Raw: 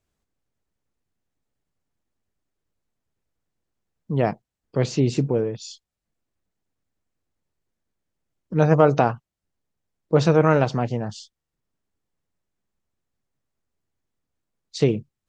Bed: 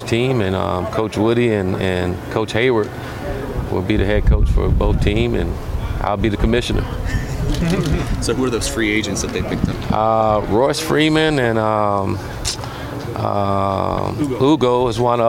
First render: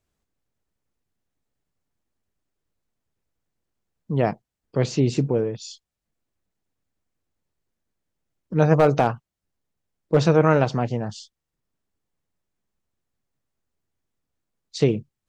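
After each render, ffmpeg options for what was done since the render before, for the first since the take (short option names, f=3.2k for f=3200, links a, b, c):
-filter_complex "[0:a]asettb=1/sr,asplit=3[a][b][c];[a]atrim=end=8.794[d];[b]atrim=start=8.79:end=10.21,asetpts=PTS-STARTPTS,afade=t=in:d=0.004:c=qsin,afade=t=out:st=1.416:d=0.004:c=qsin,asoftclip=type=hard:threshold=-8.5dB[e];[c]atrim=start=10.206[f];[d][e]acrossfade=d=0.004:c1=hsin:c2=qsin[g];[g][f]acrossfade=d=0.004:c1=qsin:c2=hsin"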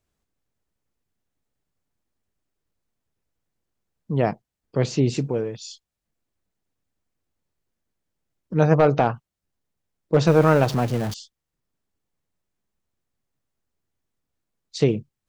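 -filter_complex "[0:a]asettb=1/sr,asplit=3[a][b][c];[a]atrim=end=5.144[d];[b]atrim=start=5.14:end=5.6,asetpts=PTS-STARTPTS,afade=t=in:d=0.004:c=qsin,afade=t=out:st=0.456:d=0.004:c=qsin,tiltshelf=f=1.3k:g=-3.5[e];[c]atrim=start=5.596[f];[d][e]acrossfade=d=0.004:c1=hsin:c2=qsin[g];[g][f]acrossfade=d=0.004:c1=qsin:c2=hsin,asettb=1/sr,asplit=3[h][i][j];[h]atrim=end=8.744[k];[i]atrim=start=8.74:end=9.14,asetpts=PTS-STARTPTS,afade=t=in:d=0.004:c=qsin,afade=t=out:st=0.396:d=0.004:c=qsin,lowpass=4.3k[l];[j]atrim=start=9.136[m];[k][l]acrossfade=d=0.004:c1=hsin:c2=qsin[n];[n][m]acrossfade=d=0.004:c1=qsin:c2=hsin,asettb=1/sr,asplit=3[o][p][q];[o]atrim=end=10.274[r];[p]atrim=start=10.27:end=11.14,asetpts=PTS-STARTPTS,afade=t=in:d=0.004:c=qsin,afade=t=out:st=0.866:d=0.004:c=qsin,aeval=exprs='val(0)+0.5*0.0376*sgn(val(0))':c=same[s];[q]atrim=start=11.136[t];[r][s]acrossfade=d=0.004:c1=hsin:c2=qsin[u];[u][t]acrossfade=d=0.004:c1=qsin:c2=hsin"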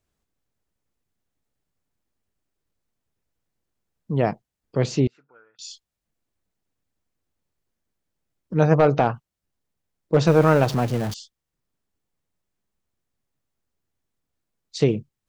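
-filter_complex "[0:a]asettb=1/sr,asplit=3[a][b][c];[a]atrim=end=5.074[d];[b]atrim=start=5.07:end=5.59,asetpts=PTS-STARTPTS,afade=t=in:d=0.004:c=qsin,afade=t=out:st=0.516:d=0.004:c=qsin,bandpass=f=1.4k:t=q:w=14[e];[c]atrim=start=5.586[f];[d][e]acrossfade=d=0.004:c1=hsin:c2=qsin[g];[g][f]acrossfade=d=0.004:c1=qsin:c2=hsin"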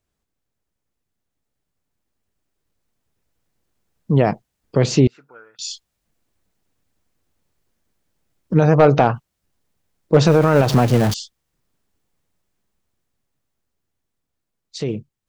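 -af "alimiter=limit=-13dB:level=0:latency=1:release=102,dynaudnorm=f=440:g=13:m=10.5dB"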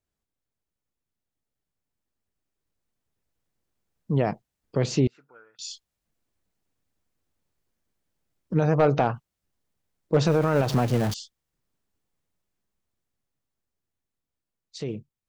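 -af "volume=-8dB"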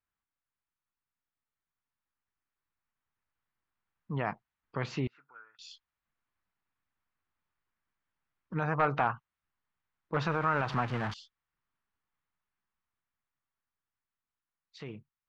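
-af "lowpass=2.3k,lowshelf=f=770:t=q:w=1.5:g=-10.5"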